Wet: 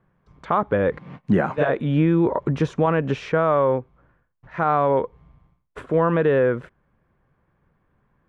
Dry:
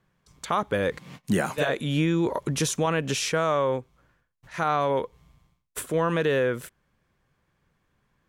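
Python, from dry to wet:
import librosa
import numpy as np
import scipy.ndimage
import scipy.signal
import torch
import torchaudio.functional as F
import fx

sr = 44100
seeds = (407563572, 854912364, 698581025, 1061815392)

y = scipy.signal.sosfilt(scipy.signal.butter(2, 1500.0, 'lowpass', fs=sr, output='sos'), x)
y = y * 10.0 ** (5.5 / 20.0)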